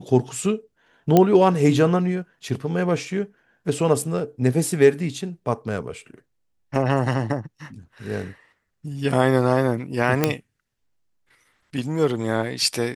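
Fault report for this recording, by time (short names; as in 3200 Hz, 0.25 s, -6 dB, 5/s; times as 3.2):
1.17 pop -3 dBFS
10.24 pop -3 dBFS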